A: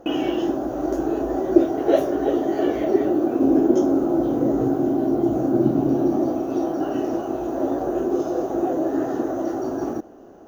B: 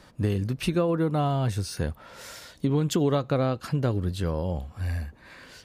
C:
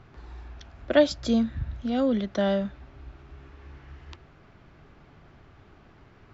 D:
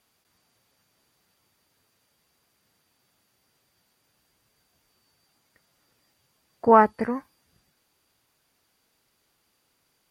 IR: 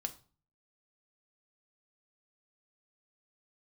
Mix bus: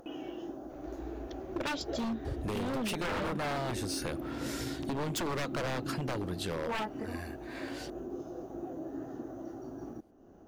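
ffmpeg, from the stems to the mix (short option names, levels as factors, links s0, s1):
-filter_complex "[0:a]asubboost=boost=2.5:cutoff=250,acompressor=mode=upward:threshold=0.0398:ratio=2.5,volume=0.119[s0];[1:a]highpass=f=360:p=1,adelay=2250,volume=1.26[s1];[2:a]adelay=700,volume=0.596[s2];[3:a]aecho=1:1:4.6:0.42,flanger=delay=19.5:depth=5:speed=0.57,volume=0.266,asplit=2[s3][s4];[s4]apad=whole_len=348372[s5];[s1][s5]sidechaincompress=threshold=0.00708:ratio=3:attack=39:release=372[s6];[s0][s6][s2][s3]amix=inputs=4:normalize=0,aeval=exprs='0.0596*(abs(mod(val(0)/0.0596+3,4)-2)-1)':c=same,acompressor=threshold=0.0251:ratio=3"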